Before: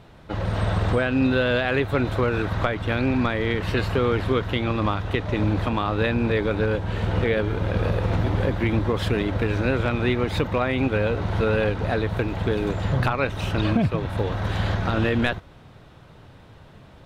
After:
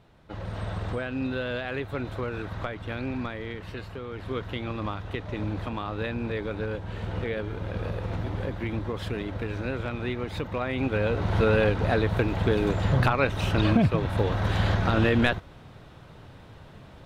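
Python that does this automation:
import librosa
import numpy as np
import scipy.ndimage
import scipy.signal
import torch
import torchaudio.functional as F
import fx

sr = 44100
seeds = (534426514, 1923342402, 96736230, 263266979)

y = fx.gain(x, sr, db=fx.line((3.17, -9.5), (4.07, -16.5), (4.38, -8.5), (10.41, -8.5), (11.37, 0.0)))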